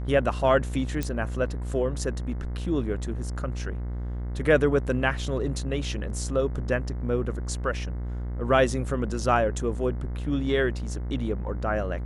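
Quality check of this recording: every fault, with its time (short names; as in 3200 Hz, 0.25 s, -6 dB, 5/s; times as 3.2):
buzz 60 Hz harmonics 36 -31 dBFS
1.03 pop -15 dBFS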